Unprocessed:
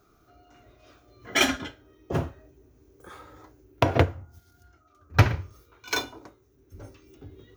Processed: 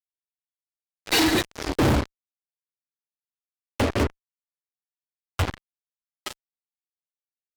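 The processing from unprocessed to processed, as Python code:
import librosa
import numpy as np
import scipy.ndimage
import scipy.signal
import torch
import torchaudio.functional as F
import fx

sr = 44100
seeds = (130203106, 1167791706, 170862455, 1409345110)

y = fx.freq_compress(x, sr, knee_hz=3200.0, ratio=4.0)
y = fx.doppler_pass(y, sr, speed_mps=58, closest_m=3.9, pass_at_s=1.66)
y = fx.dynamic_eq(y, sr, hz=290.0, q=1.4, threshold_db=-58.0, ratio=4.0, max_db=6)
y = fx.fuzz(y, sr, gain_db=60.0, gate_db=-55.0)
y = y * librosa.db_to_amplitude(-4.5)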